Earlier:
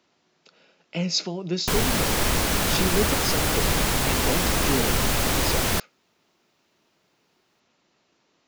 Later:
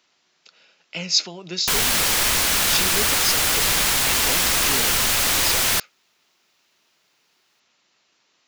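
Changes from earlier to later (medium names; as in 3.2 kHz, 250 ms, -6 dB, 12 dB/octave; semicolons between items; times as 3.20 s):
speech: send -10.0 dB; master: add tilt shelf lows -7.5 dB, about 900 Hz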